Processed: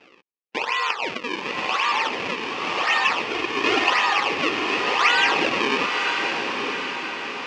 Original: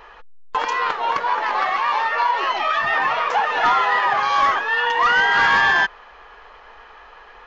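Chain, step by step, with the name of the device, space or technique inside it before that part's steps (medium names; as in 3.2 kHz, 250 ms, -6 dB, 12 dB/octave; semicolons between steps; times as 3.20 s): circuit-bent sampling toy (decimation with a swept rate 37×, swing 160% 0.92 Hz; cabinet simulation 560–4800 Hz, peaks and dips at 640 Hz -8 dB, 930 Hz -3 dB, 1.5 kHz -6 dB, 2.6 kHz +9 dB, 3.9 kHz -6 dB); 3.28–3.90 s: comb 2.8 ms, depth 100%; echo that smears into a reverb 955 ms, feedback 54%, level -4.5 dB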